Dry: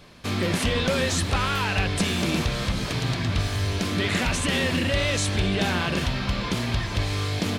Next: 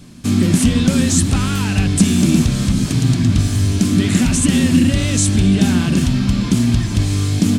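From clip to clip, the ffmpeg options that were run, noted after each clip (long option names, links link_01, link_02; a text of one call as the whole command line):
ffmpeg -i in.wav -af "equalizer=frequency=125:width_type=o:width=1:gain=4,equalizer=frequency=250:width_type=o:width=1:gain=11,equalizer=frequency=500:width_type=o:width=1:gain=-10,equalizer=frequency=1000:width_type=o:width=1:gain=-6,equalizer=frequency=2000:width_type=o:width=1:gain=-6,equalizer=frequency=4000:width_type=o:width=1:gain=-5,equalizer=frequency=8000:width_type=o:width=1:gain=8,volume=6.5dB" out.wav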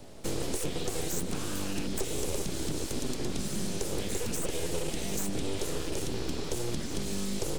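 ffmpeg -i in.wav -filter_complex "[0:a]aeval=exprs='val(0)+0.00794*sin(2*PI*420*n/s)':channel_layout=same,aeval=exprs='abs(val(0))':channel_layout=same,acrossover=split=180|870|3700|7500[link_01][link_02][link_03][link_04][link_05];[link_01]acompressor=threshold=-25dB:ratio=4[link_06];[link_02]acompressor=threshold=-28dB:ratio=4[link_07];[link_03]acompressor=threshold=-40dB:ratio=4[link_08];[link_04]acompressor=threshold=-36dB:ratio=4[link_09];[link_05]acompressor=threshold=-31dB:ratio=4[link_10];[link_06][link_07][link_08][link_09][link_10]amix=inputs=5:normalize=0,volume=-7.5dB" out.wav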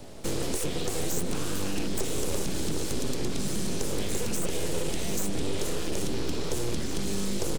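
ffmpeg -i in.wav -filter_complex "[0:a]asplit=2[link_01][link_02];[link_02]adelay=758,volume=-7dB,highshelf=frequency=4000:gain=-17.1[link_03];[link_01][link_03]amix=inputs=2:normalize=0,asplit=2[link_04][link_05];[link_05]asoftclip=type=hard:threshold=-30.5dB,volume=-4.5dB[link_06];[link_04][link_06]amix=inputs=2:normalize=0" out.wav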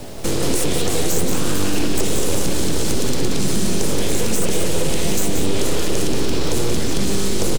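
ffmpeg -i in.wav -filter_complex "[0:a]asplit=2[link_01][link_02];[link_02]alimiter=limit=-23.5dB:level=0:latency=1,volume=2dB[link_03];[link_01][link_03]amix=inputs=2:normalize=0,acrusher=bits=7:mix=0:aa=0.000001,aecho=1:1:180:0.531,volume=4dB" out.wav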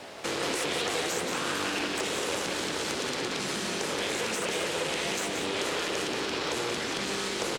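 ffmpeg -i in.wav -af "bandpass=frequency=1700:width_type=q:width=0.75:csg=0" out.wav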